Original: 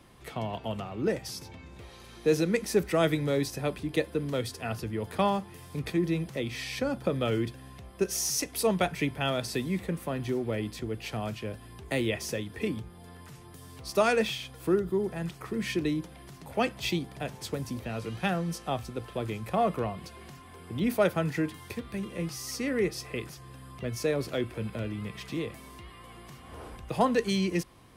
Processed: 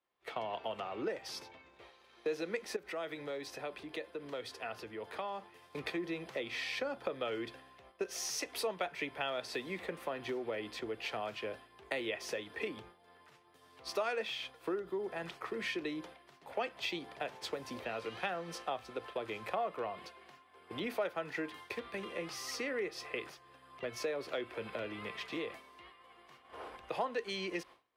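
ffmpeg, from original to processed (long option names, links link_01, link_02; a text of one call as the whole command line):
ffmpeg -i in.wav -filter_complex "[0:a]asettb=1/sr,asplit=3[link_01][link_02][link_03];[link_01]atrim=end=2.764[link_04];[link_02]atrim=start=2.76:end=5.6,asetpts=PTS-STARTPTS,afade=type=in:duration=0.004:curve=qsin,afade=type=out:start_time=2.836:duration=0.004:curve=qsin,acompressor=threshold=-38dB:ratio=3:attack=3.2:release=140:knee=1:detection=peak[link_05];[link_03]atrim=start=5.596[link_06];[link_04][link_05]acrossfade=duration=0.004:curve1=hsin:curve2=qsin[link_07];[link_07][link_06]acrossfade=duration=0.004:curve1=qsin:curve2=hsin,agate=range=-33dB:threshold=-39dB:ratio=3:detection=peak,acrossover=split=370 4500:gain=0.0891 1 0.2[link_08][link_09][link_10];[link_08][link_09][link_10]amix=inputs=3:normalize=0,acompressor=threshold=-40dB:ratio=3,volume=3.5dB" out.wav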